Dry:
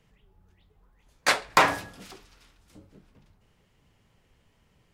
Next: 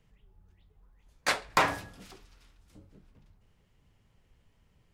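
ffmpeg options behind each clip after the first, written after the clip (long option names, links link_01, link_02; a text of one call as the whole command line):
ffmpeg -i in.wav -af "lowshelf=frequency=110:gain=8.5,volume=-5.5dB" out.wav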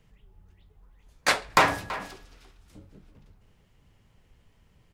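ffmpeg -i in.wav -filter_complex "[0:a]asplit=2[link_01][link_02];[link_02]adelay=330,highpass=300,lowpass=3400,asoftclip=type=hard:threshold=-20.5dB,volume=-12dB[link_03];[link_01][link_03]amix=inputs=2:normalize=0,volume=5dB" out.wav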